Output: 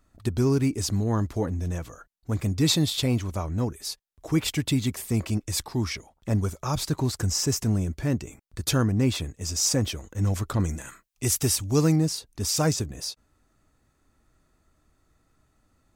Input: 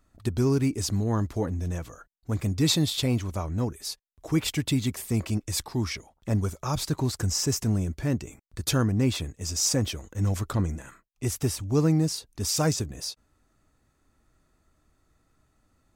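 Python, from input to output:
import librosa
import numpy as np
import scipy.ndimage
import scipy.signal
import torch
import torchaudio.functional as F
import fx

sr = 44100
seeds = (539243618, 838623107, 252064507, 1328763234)

y = fx.high_shelf(x, sr, hz=2400.0, db=9.0, at=(10.6, 11.96))
y = y * librosa.db_to_amplitude(1.0)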